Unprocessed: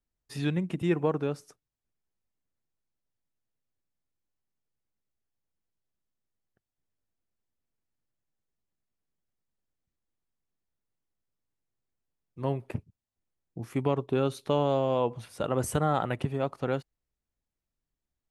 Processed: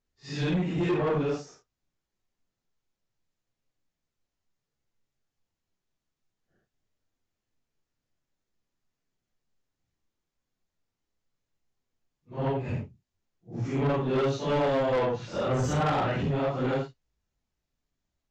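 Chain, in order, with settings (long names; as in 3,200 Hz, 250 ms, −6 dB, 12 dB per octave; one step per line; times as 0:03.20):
random phases in long frames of 200 ms
downsampling to 16,000 Hz
soft clipping −28 dBFS, distortion −9 dB
level +6 dB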